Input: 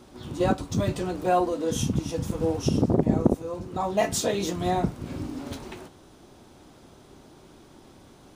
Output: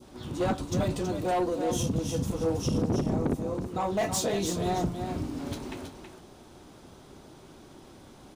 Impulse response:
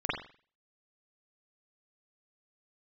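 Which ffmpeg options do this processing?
-af "asoftclip=type=tanh:threshold=-21.5dB,adynamicequalizer=threshold=0.00501:dfrequency=1700:dqfactor=0.88:tfrequency=1700:tqfactor=0.88:attack=5:release=100:ratio=0.375:range=2.5:mode=cutabove:tftype=bell,aecho=1:1:324:0.422"

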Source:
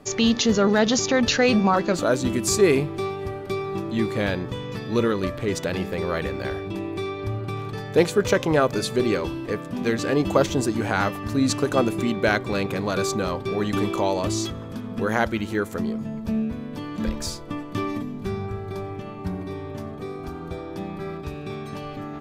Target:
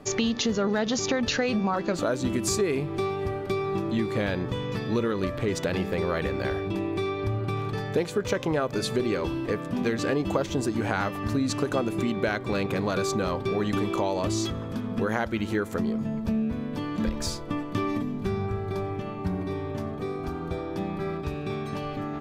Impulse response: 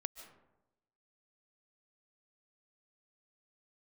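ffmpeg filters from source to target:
-af "highshelf=f=5.5k:g=-4.5,acompressor=threshold=-24dB:ratio=6,volume=1.5dB"

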